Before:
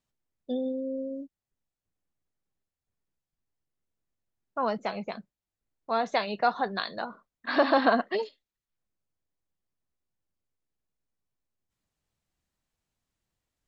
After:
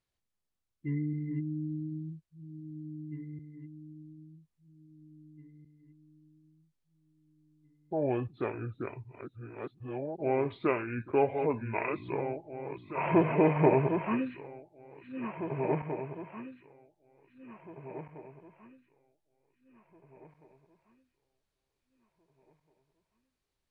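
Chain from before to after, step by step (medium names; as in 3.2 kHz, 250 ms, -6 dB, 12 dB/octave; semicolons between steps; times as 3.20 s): backward echo that repeats 652 ms, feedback 49%, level -7 dB; speed mistake 78 rpm record played at 45 rpm; trim -2.5 dB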